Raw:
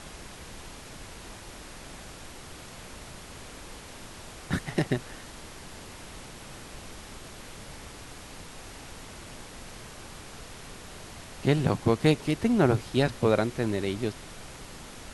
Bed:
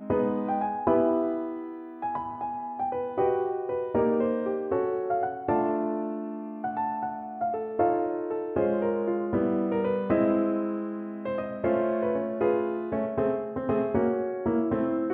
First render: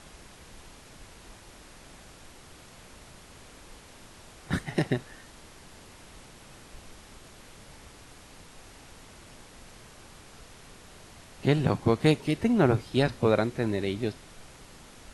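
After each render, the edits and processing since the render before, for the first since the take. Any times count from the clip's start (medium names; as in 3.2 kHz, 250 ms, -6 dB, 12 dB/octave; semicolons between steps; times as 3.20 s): noise print and reduce 6 dB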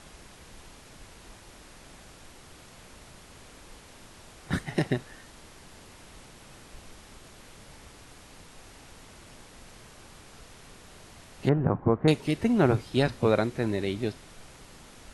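11.49–12.08 s: low-pass 1.5 kHz 24 dB/octave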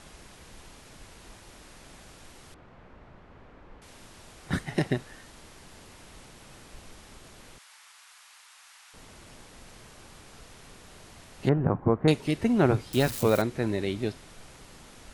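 2.54–3.82 s: low-pass 1.6 kHz; 7.58–8.94 s: high-pass 1 kHz 24 dB/octave; 12.93–13.42 s: zero-crossing glitches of -26 dBFS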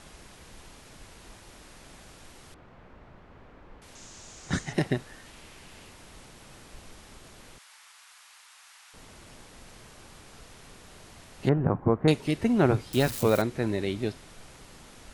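3.95–4.73 s: resonant low-pass 6.8 kHz, resonance Q 4.3; 5.25–5.90 s: peaking EQ 2.6 kHz +5.5 dB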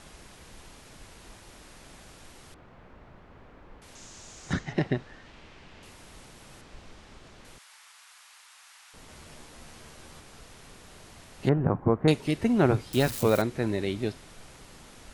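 4.53–5.83 s: distance through air 140 m; 6.61–7.45 s: distance through air 74 m; 9.07–10.20 s: doubling 13 ms -4 dB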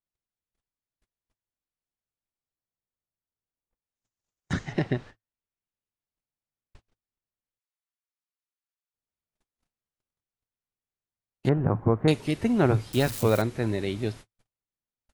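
gate -41 dBFS, range -50 dB; peaking EQ 110 Hz +5.5 dB 0.24 oct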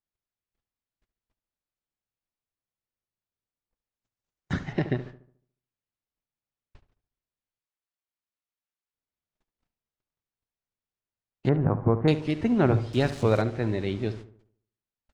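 distance through air 100 m; filtered feedback delay 72 ms, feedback 46%, low-pass 1.9 kHz, level -12.5 dB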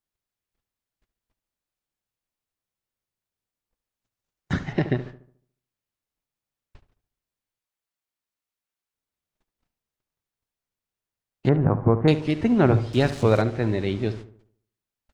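trim +3.5 dB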